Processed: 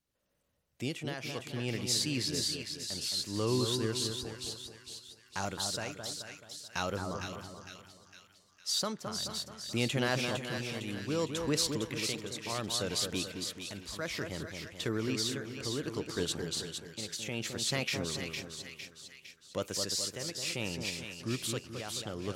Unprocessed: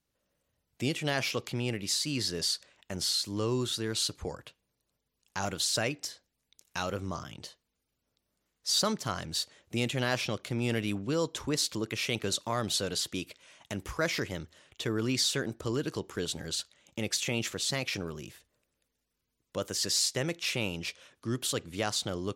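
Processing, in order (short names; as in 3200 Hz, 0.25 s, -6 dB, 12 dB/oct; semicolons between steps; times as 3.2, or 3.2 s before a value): tremolo triangle 0.63 Hz, depth 75%; on a send: split-band echo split 1600 Hz, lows 0.215 s, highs 0.457 s, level -5.5 dB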